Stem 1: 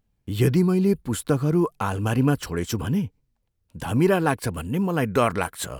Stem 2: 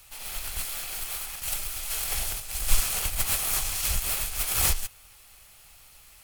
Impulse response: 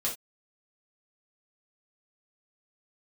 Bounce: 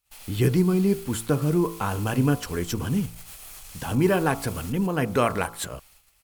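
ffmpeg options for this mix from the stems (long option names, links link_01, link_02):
-filter_complex "[0:a]bandreject=frequency=55.98:width_type=h:width=4,bandreject=frequency=111.96:width_type=h:width=4,bandreject=frequency=167.94:width_type=h:width=4,bandreject=frequency=223.92:width_type=h:width=4,bandreject=frequency=279.9:width_type=h:width=4,bandreject=frequency=335.88:width_type=h:width=4,bandreject=frequency=391.86:width_type=h:width=4,bandreject=frequency=447.84:width_type=h:width=4,bandreject=frequency=503.82:width_type=h:width=4,bandreject=frequency=559.8:width_type=h:width=4,bandreject=frequency=615.78:width_type=h:width=4,bandreject=frequency=671.76:width_type=h:width=4,bandreject=frequency=727.74:width_type=h:width=4,bandreject=frequency=783.72:width_type=h:width=4,bandreject=frequency=839.7:width_type=h:width=4,bandreject=frequency=895.68:width_type=h:width=4,bandreject=frequency=951.66:width_type=h:width=4,bandreject=frequency=1007.64:width_type=h:width=4,bandreject=frequency=1063.62:width_type=h:width=4,bandreject=frequency=1119.6:width_type=h:width=4,bandreject=frequency=1175.58:width_type=h:width=4,bandreject=frequency=1231.56:width_type=h:width=4,bandreject=frequency=1287.54:width_type=h:width=4,bandreject=frequency=1343.52:width_type=h:width=4,bandreject=frequency=1399.5:width_type=h:width=4,volume=-1dB[link_01];[1:a]acompressor=threshold=-38dB:ratio=4,volume=35.5dB,asoftclip=hard,volume=-35.5dB,volume=-3dB,asplit=2[link_02][link_03];[link_03]volume=-9.5dB,aecho=0:1:722:1[link_04];[link_01][link_02][link_04]amix=inputs=3:normalize=0,agate=range=-24dB:threshold=-53dB:ratio=16:detection=peak"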